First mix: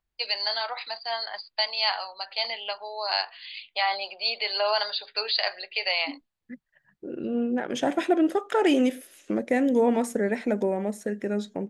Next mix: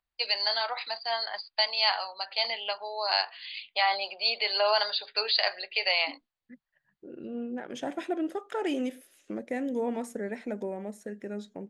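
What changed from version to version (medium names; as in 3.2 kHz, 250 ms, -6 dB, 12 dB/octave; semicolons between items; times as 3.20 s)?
second voice -9.0 dB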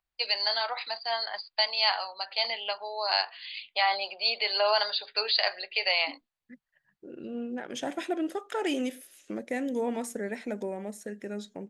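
second voice: add treble shelf 2.4 kHz +7.5 dB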